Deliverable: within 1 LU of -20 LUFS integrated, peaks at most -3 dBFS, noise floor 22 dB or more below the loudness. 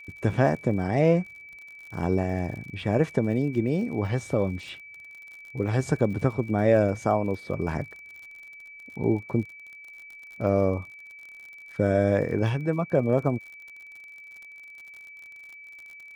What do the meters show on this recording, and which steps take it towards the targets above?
tick rate 54 per s; steady tone 2.3 kHz; tone level -43 dBFS; loudness -26.0 LUFS; peak level -8.0 dBFS; loudness target -20.0 LUFS
-> de-click; band-stop 2.3 kHz, Q 30; trim +6 dB; peak limiter -3 dBFS

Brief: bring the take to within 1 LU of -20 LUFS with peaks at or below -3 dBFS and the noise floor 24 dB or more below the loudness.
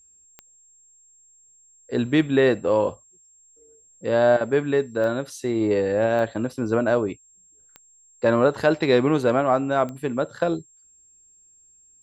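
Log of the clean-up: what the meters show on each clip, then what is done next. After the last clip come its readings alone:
clicks found 5; steady tone 7.5 kHz; tone level -53 dBFS; loudness -22.0 LUFS; peak level -5.5 dBFS; loudness target -20.0 LUFS
-> de-click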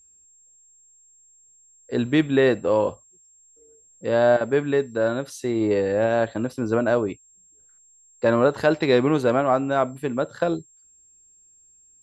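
clicks found 0; steady tone 7.5 kHz; tone level -53 dBFS
-> band-stop 7.5 kHz, Q 30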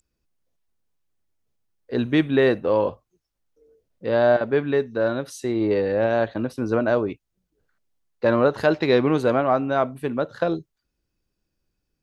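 steady tone not found; loudness -22.0 LUFS; peak level -5.5 dBFS; loudness target -20.0 LUFS
-> trim +2 dB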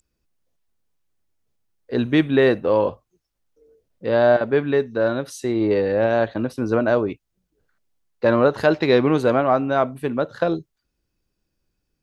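loudness -20.0 LUFS; peak level -3.5 dBFS; noise floor -77 dBFS

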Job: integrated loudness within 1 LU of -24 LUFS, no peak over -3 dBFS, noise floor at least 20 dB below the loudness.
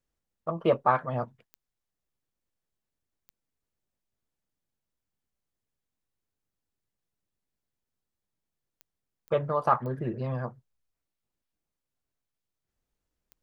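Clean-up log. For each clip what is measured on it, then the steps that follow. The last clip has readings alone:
clicks found 6; loudness -29.0 LUFS; peak level -9.0 dBFS; loudness target -24.0 LUFS
-> de-click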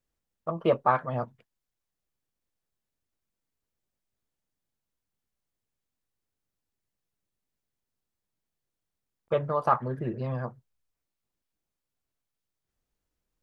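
clicks found 0; loudness -29.0 LUFS; peak level -9.0 dBFS; loudness target -24.0 LUFS
-> trim +5 dB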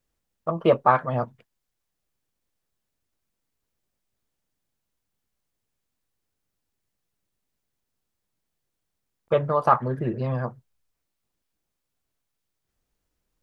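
loudness -24.0 LUFS; peak level -4.0 dBFS; noise floor -81 dBFS

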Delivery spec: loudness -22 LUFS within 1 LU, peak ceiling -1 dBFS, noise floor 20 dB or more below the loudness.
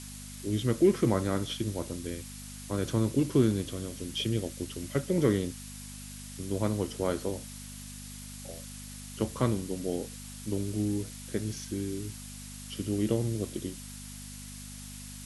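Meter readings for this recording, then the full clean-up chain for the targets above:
hum 50 Hz; highest harmonic 250 Hz; hum level -43 dBFS; noise floor -44 dBFS; noise floor target -52 dBFS; loudness -31.5 LUFS; peak level -12.0 dBFS; loudness target -22.0 LUFS
-> de-hum 50 Hz, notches 5; noise print and reduce 8 dB; trim +9.5 dB

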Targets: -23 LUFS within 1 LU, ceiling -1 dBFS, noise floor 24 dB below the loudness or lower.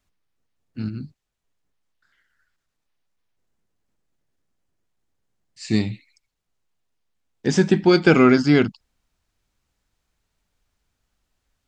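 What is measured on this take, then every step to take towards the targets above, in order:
loudness -18.0 LUFS; peak level -2.5 dBFS; loudness target -23.0 LUFS
-> trim -5 dB

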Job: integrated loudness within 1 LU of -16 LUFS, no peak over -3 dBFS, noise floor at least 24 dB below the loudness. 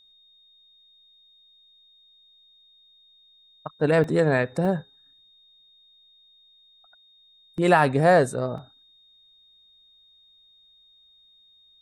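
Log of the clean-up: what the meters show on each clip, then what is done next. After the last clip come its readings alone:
dropouts 4; longest dropout 1.6 ms; steady tone 3.7 kHz; tone level -55 dBFS; loudness -22.0 LUFS; peak level -5.5 dBFS; loudness target -16.0 LUFS
-> interpolate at 4.04/4.65/7.58/8.58 s, 1.6 ms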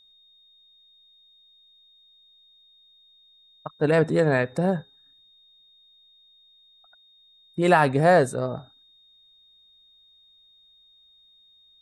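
dropouts 0; steady tone 3.7 kHz; tone level -55 dBFS
-> band-stop 3.7 kHz, Q 30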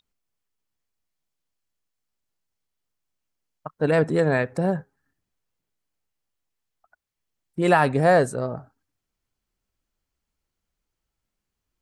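steady tone not found; loudness -22.0 LUFS; peak level -5.5 dBFS; loudness target -16.0 LUFS
-> trim +6 dB; peak limiter -3 dBFS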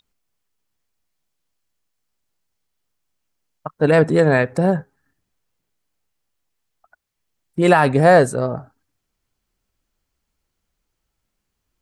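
loudness -16.0 LUFS; peak level -3.0 dBFS; noise floor -77 dBFS

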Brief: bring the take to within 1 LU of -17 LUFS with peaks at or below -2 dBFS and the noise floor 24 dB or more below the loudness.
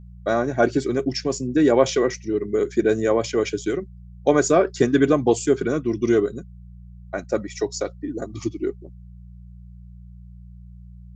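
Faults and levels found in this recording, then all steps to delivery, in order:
hum 60 Hz; highest harmonic 180 Hz; hum level -39 dBFS; loudness -22.0 LUFS; peak level -3.0 dBFS; loudness target -17.0 LUFS
-> de-hum 60 Hz, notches 3; trim +5 dB; peak limiter -2 dBFS

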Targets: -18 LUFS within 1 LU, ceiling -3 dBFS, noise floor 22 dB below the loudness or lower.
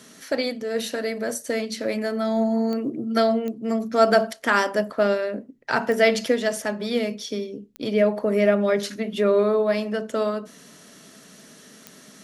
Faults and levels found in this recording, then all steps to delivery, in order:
clicks found 5; loudness -23.5 LUFS; peak level -5.5 dBFS; loudness target -18.0 LUFS
-> de-click; trim +5.5 dB; peak limiter -3 dBFS

